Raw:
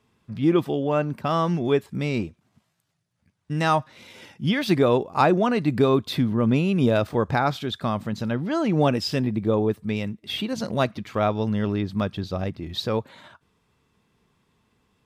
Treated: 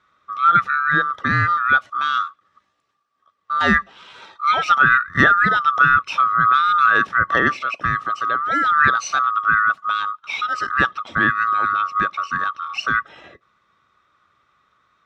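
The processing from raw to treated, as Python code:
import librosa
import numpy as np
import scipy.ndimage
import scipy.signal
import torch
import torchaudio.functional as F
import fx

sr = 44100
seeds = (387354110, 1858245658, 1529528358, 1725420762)

y = fx.band_swap(x, sr, width_hz=1000)
y = scipy.signal.sosfilt(scipy.signal.butter(2, 77.0, 'highpass', fs=sr, output='sos'), y)
y = fx.air_absorb(y, sr, metres=120.0)
y = y * librosa.db_to_amplitude(5.5)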